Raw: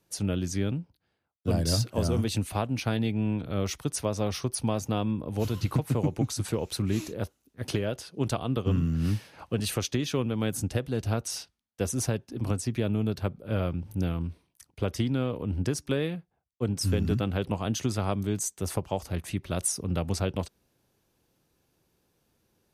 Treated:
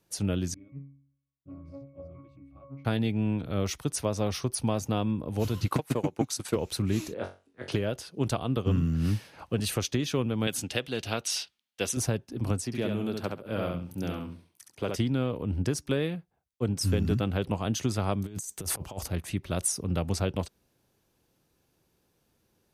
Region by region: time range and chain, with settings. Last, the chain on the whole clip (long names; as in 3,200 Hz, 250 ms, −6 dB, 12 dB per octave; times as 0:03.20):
0:00.54–0:02.85: resonances in every octave C#, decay 0.59 s + highs frequency-modulated by the lows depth 0.23 ms
0:05.68–0:06.56: high-pass filter 430 Hz 6 dB per octave + transient designer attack +9 dB, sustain −9 dB
0:07.14–0:07.72: three-way crossover with the lows and the highs turned down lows −13 dB, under 270 Hz, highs −15 dB, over 4,200 Hz + flutter between parallel walls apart 3.7 metres, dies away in 0.3 s + bad sample-rate conversion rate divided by 2×, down none, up filtered
0:10.47–0:11.97: high-pass filter 310 Hz 6 dB per octave + parametric band 3,100 Hz +11 dB 1.4 octaves
0:12.65–0:14.96: high-pass filter 110 Hz + low-shelf EQ 190 Hz −7 dB + repeating echo 68 ms, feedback 24%, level −4 dB
0:18.26–0:19.08: high-shelf EQ 8,600 Hz +6.5 dB + compressor whose output falls as the input rises −34 dBFS, ratio −0.5
whole clip: no processing